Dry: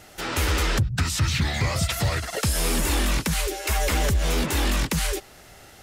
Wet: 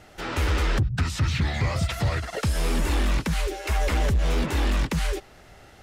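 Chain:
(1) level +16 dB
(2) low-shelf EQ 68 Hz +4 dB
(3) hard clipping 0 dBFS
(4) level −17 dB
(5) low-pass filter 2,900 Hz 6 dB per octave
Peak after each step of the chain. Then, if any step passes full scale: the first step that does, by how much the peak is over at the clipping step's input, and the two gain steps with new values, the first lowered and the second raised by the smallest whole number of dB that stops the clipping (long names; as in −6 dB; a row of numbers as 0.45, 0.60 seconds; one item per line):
+1.0, +3.5, 0.0, −17.0, −17.0 dBFS
step 1, 3.5 dB
step 1 +12 dB, step 4 −13 dB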